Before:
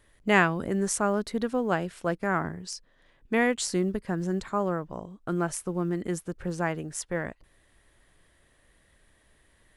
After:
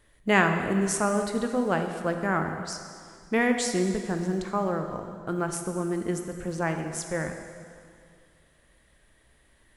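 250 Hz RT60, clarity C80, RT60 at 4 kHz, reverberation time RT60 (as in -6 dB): 2.3 s, 7.0 dB, 2.0 s, 2.2 s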